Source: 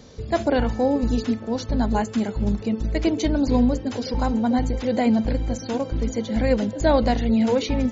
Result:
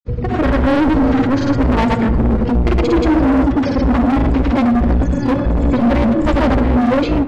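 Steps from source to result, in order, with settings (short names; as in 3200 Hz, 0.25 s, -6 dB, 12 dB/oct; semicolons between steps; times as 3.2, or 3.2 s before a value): LPF 1500 Hz 12 dB/oct; bell 620 Hz -8 dB 1.1 oct; de-hum 65.26 Hz, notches 2; in parallel at 0 dB: limiter -21 dBFS, peak gain reduction 9.5 dB; on the sum: AGC gain up to 12 dB; hard clip -15 dBFS, distortion -7 dB; grains 0.1 s, grains 20/s, pitch spread up and down by 0 st; soft clip -16 dBFS, distortion -21 dB; on a send at -12 dB: reverb RT60 1.7 s, pre-delay 5 ms; on the sum: speed mistake 44.1 kHz file played as 48 kHz; gain +7 dB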